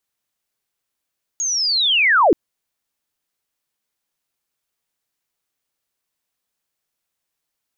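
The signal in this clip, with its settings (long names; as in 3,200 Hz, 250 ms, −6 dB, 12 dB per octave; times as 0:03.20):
glide linear 6,700 Hz → 270 Hz −19 dBFS → −9 dBFS 0.93 s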